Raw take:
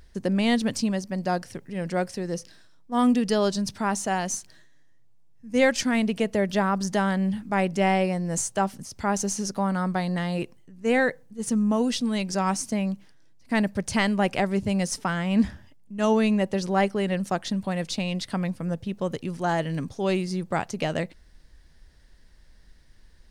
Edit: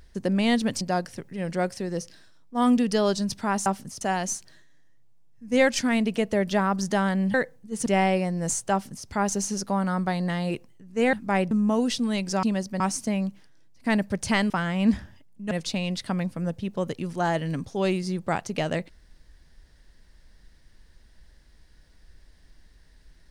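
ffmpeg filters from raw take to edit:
-filter_complex "[0:a]asplit=12[s0][s1][s2][s3][s4][s5][s6][s7][s8][s9][s10][s11];[s0]atrim=end=0.812[s12];[s1]atrim=start=1.178:end=4.032[s13];[s2]atrim=start=8.598:end=8.952[s14];[s3]atrim=start=4.028:end=7.362[s15];[s4]atrim=start=11.008:end=11.532[s16];[s5]atrim=start=7.738:end=11.012[s17];[s6]atrim=start=7.358:end=7.742[s18];[s7]atrim=start=11.528:end=12.452[s19];[s8]atrim=start=0.808:end=1.182[s20];[s9]atrim=start=12.448:end=14.152[s21];[s10]atrim=start=15.008:end=16.022[s22];[s11]atrim=start=17.748[s23];[s12][s13]acrossfade=d=0.004:c1=hsin:c2=hsin[s24];[s24][s14]acrossfade=d=0.004:c1=hsin:c2=hsin[s25];[s25][s15]acrossfade=d=0.004:c1=hsin:c2=hsin[s26];[s26][s16]acrossfade=d=0.004:c1=hsin:c2=hsin[s27];[s27][s17]acrossfade=d=0.004:c1=hsin:c2=hsin[s28];[s28][s18]acrossfade=d=0.004:c1=hsin:c2=hsin[s29];[s29][s19]acrossfade=d=0.004:c1=hsin:c2=hsin[s30];[s30][s20]acrossfade=d=0.004:c1=hsin:c2=hsin[s31];[s31][s21]acrossfade=d=0.004:c1=hsin:c2=hsin[s32];[s32][s22]acrossfade=d=0.004:c1=hsin:c2=hsin[s33];[s33][s23]acrossfade=d=0.004:c1=hsin:c2=hsin"

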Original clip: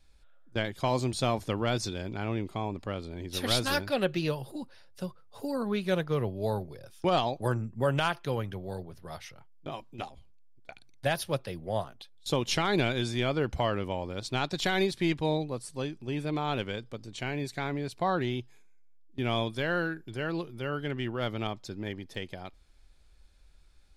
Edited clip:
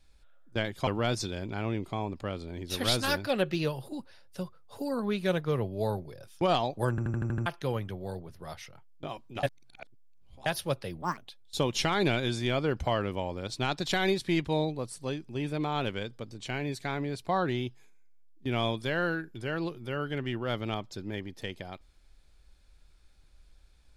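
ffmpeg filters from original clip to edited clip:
-filter_complex "[0:a]asplit=13[s0][s1][s2][s3][s4][s5][s6][s7][s8][s9][s10][s11][s12];[s0]atrim=end=0.872[s13];[s1]atrim=start=1.498:end=7.612[s14];[s2]atrim=start=7.528:end=7.612[s15];[s3]atrim=start=7.528:end=7.612[s16];[s4]atrim=start=7.528:end=7.612[s17];[s5]atrim=start=7.528:end=7.612[s18];[s6]atrim=start=7.528:end=7.612[s19];[s7]atrim=start=7.528:end=7.612[s20];[s8]atrim=start=8.088:end=10.062[s21];[s9]atrim=start=10.058:end=11.092,asetpts=PTS-STARTPTS,areverse[s22];[s10]atrim=start=11.088:end=11.654[s23];[s11]atrim=start=11.65:end=11.9,asetpts=PTS-STARTPTS,asetrate=71883,aresample=44100[s24];[s12]atrim=start=11.896[s25];[s13][s14]acrossfade=d=0.004:c1=hsin:c2=hsin[s26];[s26][s15]acrossfade=d=0.004:c1=hsin:c2=hsin[s27];[s27][s16]acrossfade=d=0.004:c1=hsin:c2=hsin[s28];[s28][s17]acrossfade=d=0.004:c1=hsin:c2=hsin[s29];[s29][s18]acrossfade=d=0.004:c1=hsin:c2=hsin[s30];[s30][s19]acrossfade=d=0.004:c1=hsin:c2=hsin[s31];[s31][s20]acrossfade=d=0.004:c1=hsin:c2=hsin[s32];[s32][s21]acrossfade=d=0.004:c1=hsin:c2=hsin[s33];[s33][s22]acrossfade=d=0.004:c1=hsin:c2=hsin[s34];[s34][s23]acrossfade=d=0.004:c1=hsin:c2=hsin[s35];[s35][s24]acrossfade=d=0.004:c1=hsin:c2=hsin[s36];[s36][s25]acrossfade=d=0.004:c1=hsin:c2=hsin"

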